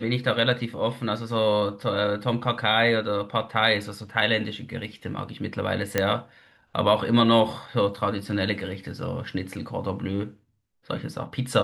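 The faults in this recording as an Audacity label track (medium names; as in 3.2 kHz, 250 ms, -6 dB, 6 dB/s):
5.980000	5.980000	pop -7 dBFS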